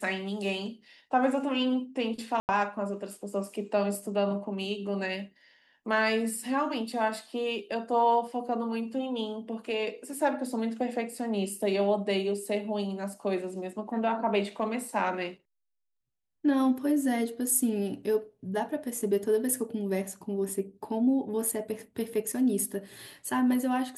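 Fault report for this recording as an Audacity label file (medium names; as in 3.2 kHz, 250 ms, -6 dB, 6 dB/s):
2.400000	2.490000	dropout 89 ms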